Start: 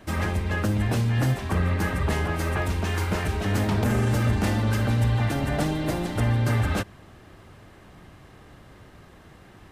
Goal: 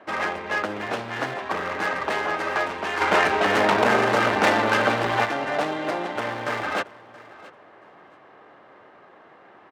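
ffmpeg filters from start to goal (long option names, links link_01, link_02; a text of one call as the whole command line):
ffmpeg -i in.wav -filter_complex "[0:a]adynamicsmooth=sensitivity=2.5:basefreq=1600,asoftclip=type=hard:threshold=-20.5dB,highpass=560,aecho=1:1:676|1352:0.1|0.018,asplit=3[link_01][link_02][link_03];[link_01]afade=type=out:start_time=3:duration=0.02[link_04];[link_02]acontrast=86,afade=type=in:start_time=3:duration=0.02,afade=type=out:start_time=5.24:duration=0.02[link_05];[link_03]afade=type=in:start_time=5.24:duration=0.02[link_06];[link_04][link_05][link_06]amix=inputs=3:normalize=0,volume=8dB" out.wav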